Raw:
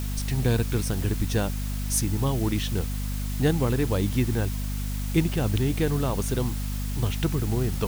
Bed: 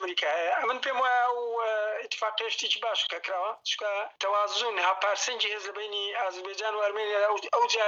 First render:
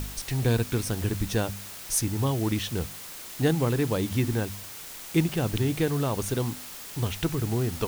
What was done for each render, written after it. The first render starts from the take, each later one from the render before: de-hum 50 Hz, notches 5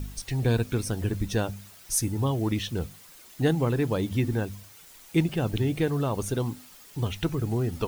noise reduction 11 dB, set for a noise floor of -41 dBFS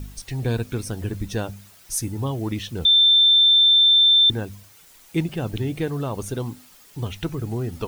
2.85–4.30 s: bleep 3.56 kHz -11.5 dBFS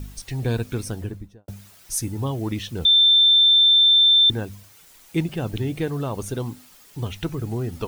0.85–1.48 s: studio fade out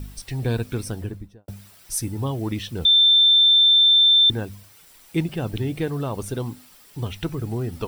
band-stop 6.6 kHz, Q 10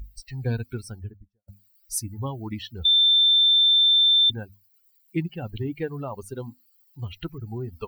expander on every frequency bin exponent 2; peak limiter -14.5 dBFS, peak gain reduction 3 dB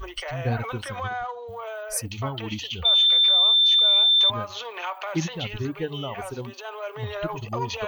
add bed -6 dB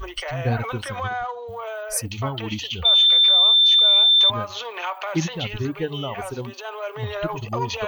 trim +3 dB

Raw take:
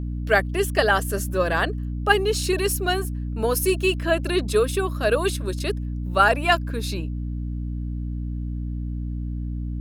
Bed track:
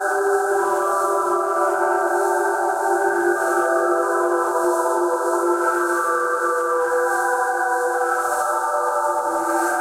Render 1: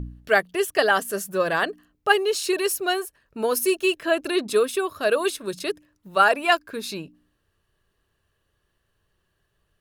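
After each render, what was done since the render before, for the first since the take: de-hum 60 Hz, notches 5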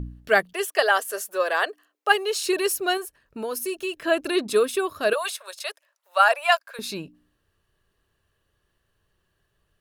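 0.53–2.42 s: high-pass 440 Hz 24 dB/octave; 2.97–4.01 s: compression 2:1, threshold -31 dBFS; 5.13–6.79 s: steep high-pass 550 Hz 48 dB/octave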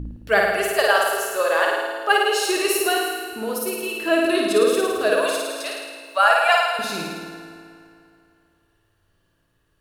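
on a send: flutter echo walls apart 9.3 m, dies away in 1.2 s; on the sum: FDN reverb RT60 2.7 s, high-frequency decay 0.75×, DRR 8.5 dB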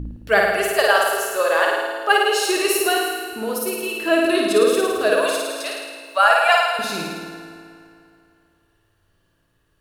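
trim +1.5 dB; peak limiter -2 dBFS, peak gain reduction 1 dB

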